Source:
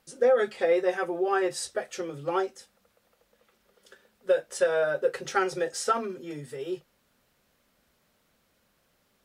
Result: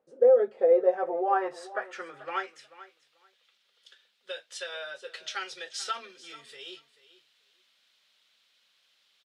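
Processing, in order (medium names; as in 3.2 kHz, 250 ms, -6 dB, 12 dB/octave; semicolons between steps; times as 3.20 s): gain riding within 5 dB 2 s; band-pass sweep 500 Hz -> 3.5 kHz, 0.70–3.01 s; feedback delay 437 ms, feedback 17%, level -17 dB; trim +6 dB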